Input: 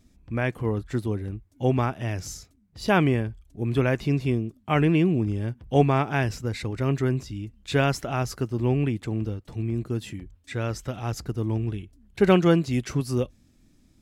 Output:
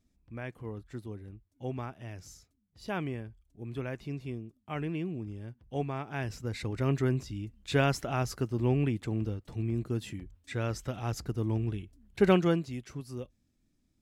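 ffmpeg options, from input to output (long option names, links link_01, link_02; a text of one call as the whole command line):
ffmpeg -i in.wav -af "volume=-4dB,afade=type=in:start_time=6.04:duration=0.7:silence=0.316228,afade=type=out:start_time=12.22:duration=0.57:silence=0.298538" out.wav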